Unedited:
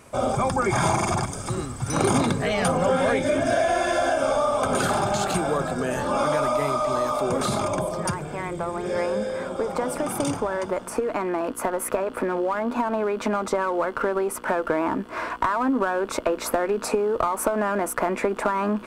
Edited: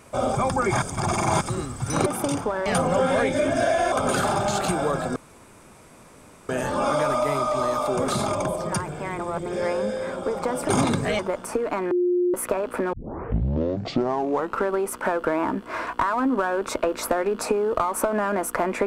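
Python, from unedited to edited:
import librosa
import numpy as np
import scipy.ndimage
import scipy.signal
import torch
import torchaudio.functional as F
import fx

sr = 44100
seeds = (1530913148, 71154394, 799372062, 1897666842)

y = fx.edit(x, sr, fx.reverse_span(start_s=0.82, length_s=0.59),
    fx.swap(start_s=2.06, length_s=0.5, other_s=10.02, other_length_s=0.6),
    fx.cut(start_s=3.82, length_s=0.76),
    fx.insert_room_tone(at_s=5.82, length_s=1.33),
    fx.reverse_span(start_s=8.52, length_s=0.27),
    fx.bleep(start_s=11.34, length_s=0.43, hz=356.0, db=-18.0),
    fx.tape_start(start_s=12.36, length_s=1.71), tone=tone)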